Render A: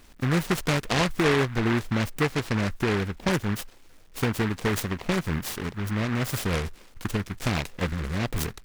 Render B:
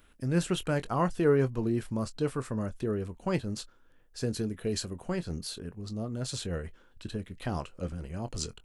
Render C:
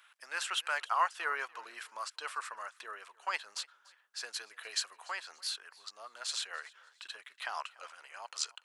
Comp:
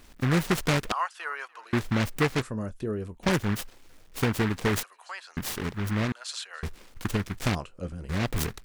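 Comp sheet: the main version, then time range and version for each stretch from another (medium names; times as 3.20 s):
A
0.92–1.73 s: from C
2.42–3.23 s: from B
4.83–5.37 s: from C
6.12–6.63 s: from C
7.55–8.09 s: from B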